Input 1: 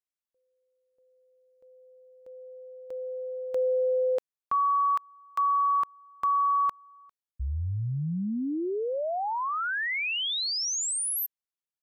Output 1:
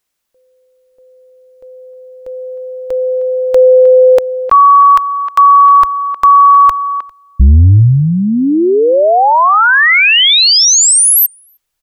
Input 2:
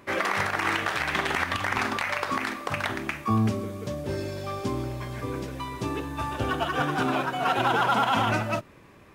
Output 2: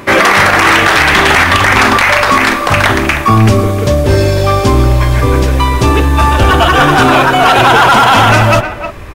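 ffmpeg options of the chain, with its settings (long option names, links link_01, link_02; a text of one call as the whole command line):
ffmpeg -i in.wav -filter_complex "[0:a]asubboost=boost=7.5:cutoff=64,asplit=2[link_01][link_02];[link_02]adelay=310,highpass=300,lowpass=3400,asoftclip=type=hard:threshold=-18dB,volume=-13dB[link_03];[link_01][link_03]amix=inputs=2:normalize=0,apsyclip=24dB,volume=-2dB" out.wav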